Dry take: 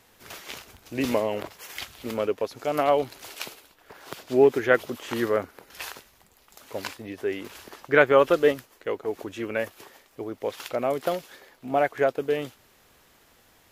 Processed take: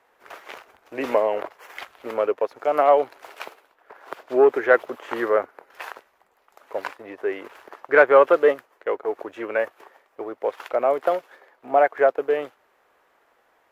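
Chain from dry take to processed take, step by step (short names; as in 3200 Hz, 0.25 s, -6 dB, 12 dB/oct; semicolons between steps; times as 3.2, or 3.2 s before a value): sample leveller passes 1; three-band isolator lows -22 dB, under 390 Hz, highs -18 dB, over 2000 Hz; gain +3.5 dB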